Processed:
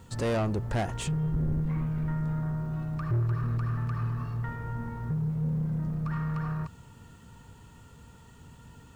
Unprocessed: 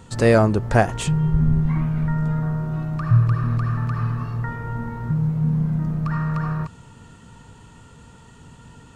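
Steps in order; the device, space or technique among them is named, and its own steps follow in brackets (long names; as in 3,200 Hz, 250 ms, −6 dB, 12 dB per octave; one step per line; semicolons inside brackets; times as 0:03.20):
open-reel tape (soft clipping −17.5 dBFS, distortion −10 dB; parametric band 69 Hz +4.5 dB 1.11 octaves; white noise bed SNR 42 dB)
level −7 dB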